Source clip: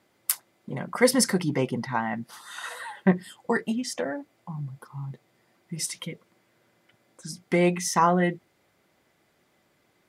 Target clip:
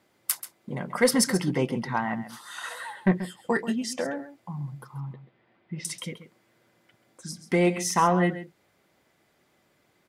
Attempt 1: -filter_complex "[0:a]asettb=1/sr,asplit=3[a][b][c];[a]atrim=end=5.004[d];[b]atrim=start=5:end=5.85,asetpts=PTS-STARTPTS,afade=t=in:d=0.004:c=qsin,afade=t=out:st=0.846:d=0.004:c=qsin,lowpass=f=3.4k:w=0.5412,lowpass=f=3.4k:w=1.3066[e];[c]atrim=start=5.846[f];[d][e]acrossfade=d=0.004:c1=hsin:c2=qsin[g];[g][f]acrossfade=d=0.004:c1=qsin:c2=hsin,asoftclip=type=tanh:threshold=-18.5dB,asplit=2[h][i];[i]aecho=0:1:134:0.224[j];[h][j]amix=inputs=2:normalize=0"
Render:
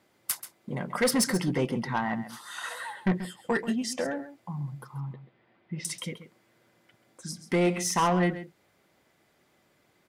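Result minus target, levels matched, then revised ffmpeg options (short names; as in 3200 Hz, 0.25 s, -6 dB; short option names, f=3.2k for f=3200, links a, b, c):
soft clip: distortion +10 dB
-filter_complex "[0:a]asettb=1/sr,asplit=3[a][b][c];[a]atrim=end=5.004[d];[b]atrim=start=5:end=5.85,asetpts=PTS-STARTPTS,afade=t=in:d=0.004:c=qsin,afade=t=out:st=0.846:d=0.004:c=qsin,lowpass=f=3.4k:w=0.5412,lowpass=f=3.4k:w=1.3066[e];[c]atrim=start=5.846[f];[d][e]acrossfade=d=0.004:c1=hsin:c2=qsin[g];[g][f]acrossfade=d=0.004:c1=qsin:c2=hsin,asoftclip=type=tanh:threshold=-9.5dB,asplit=2[h][i];[i]aecho=0:1:134:0.224[j];[h][j]amix=inputs=2:normalize=0"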